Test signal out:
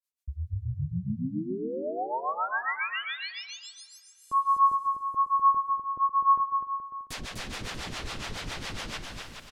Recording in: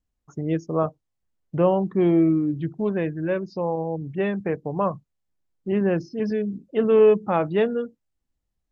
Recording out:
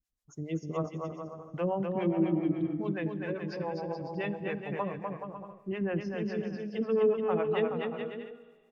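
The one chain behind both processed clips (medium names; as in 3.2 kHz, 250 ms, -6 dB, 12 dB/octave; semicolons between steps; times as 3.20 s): harmonic tremolo 7.2 Hz, depth 100%, crossover 460 Hz; treble shelf 2.5 kHz +10.5 dB; Schroeder reverb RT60 2.2 s, combs from 30 ms, DRR 17.5 dB; low-pass that closes with the level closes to 1.5 kHz, closed at -19.5 dBFS; bouncing-ball echo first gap 250 ms, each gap 0.7×, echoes 5; trim -6 dB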